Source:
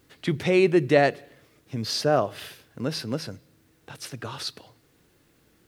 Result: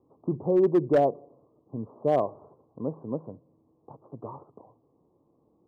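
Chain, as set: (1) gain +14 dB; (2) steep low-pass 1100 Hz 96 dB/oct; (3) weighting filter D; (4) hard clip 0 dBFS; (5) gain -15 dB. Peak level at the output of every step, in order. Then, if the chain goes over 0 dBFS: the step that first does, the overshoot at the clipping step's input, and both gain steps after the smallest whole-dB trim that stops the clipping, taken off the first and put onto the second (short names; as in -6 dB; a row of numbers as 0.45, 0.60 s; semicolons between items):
+8.5, +6.5, +5.5, 0.0, -15.0 dBFS; step 1, 5.5 dB; step 1 +8 dB, step 5 -9 dB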